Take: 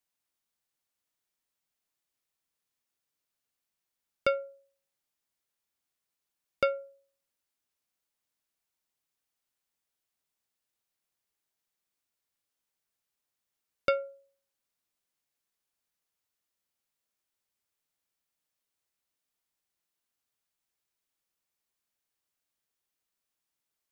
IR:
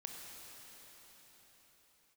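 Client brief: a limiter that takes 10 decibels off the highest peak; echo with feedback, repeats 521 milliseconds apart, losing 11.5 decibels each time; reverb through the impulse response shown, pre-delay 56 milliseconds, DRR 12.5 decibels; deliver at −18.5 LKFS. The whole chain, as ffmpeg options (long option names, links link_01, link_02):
-filter_complex "[0:a]alimiter=limit=-23dB:level=0:latency=1,aecho=1:1:521|1042|1563:0.266|0.0718|0.0194,asplit=2[link_01][link_02];[1:a]atrim=start_sample=2205,adelay=56[link_03];[link_02][link_03]afir=irnorm=-1:irlink=0,volume=-10dB[link_04];[link_01][link_04]amix=inputs=2:normalize=0,volume=22dB"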